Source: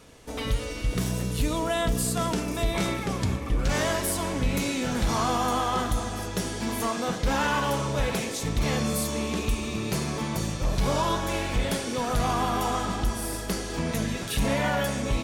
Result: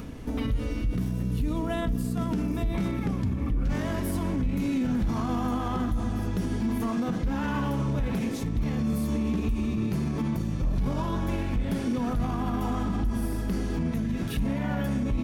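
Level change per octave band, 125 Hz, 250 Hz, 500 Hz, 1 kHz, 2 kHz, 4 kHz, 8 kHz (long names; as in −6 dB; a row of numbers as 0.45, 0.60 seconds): +1.0, +3.0, −6.0, −7.5, −8.5, −12.0, −14.5 decibels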